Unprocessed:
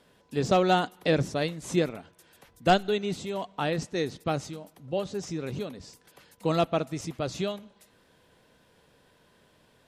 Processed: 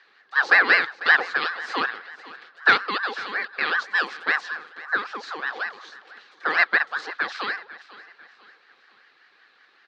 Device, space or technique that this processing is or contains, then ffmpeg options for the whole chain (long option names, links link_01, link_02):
voice changer toy: -filter_complex "[0:a]aeval=exprs='val(0)*sin(2*PI*1000*n/s+1000*0.4/5.3*sin(2*PI*5.3*n/s))':channel_layout=same,highpass=500,equalizer=frequency=620:width_type=q:width=4:gain=-10,equalizer=frequency=940:width_type=q:width=4:gain=-9,equalizer=frequency=1700:width_type=q:width=4:gain=9,equalizer=frequency=4100:width_type=q:width=4:gain=5,lowpass=frequency=4600:width=0.5412,lowpass=frequency=4600:width=1.3066,asettb=1/sr,asplit=3[link_01][link_02][link_03];[link_01]atrim=end=3.864[link_04];[link_02]atrim=start=3.86:end=4.41,asetpts=PTS-STARTPTS,afade=type=in:duration=0.004:curve=qsin,afade=type=out:start_time=0.546:duration=0.004:curve=qsin,equalizer=frequency=9300:width_type=o:width=0.74:gain=11.5[link_05];[link_03]atrim=start=4.406[link_06];[link_04][link_05]acrossfade=duration=0.004:curve1=hsin:curve2=qsin[link_07];[link_07][link_06]acrossfade=duration=0.004:curve1=qsin:curve2=hsin,aecho=1:1:496|992|1488:0.126|0.0529|0.0222,volume=6.5dB"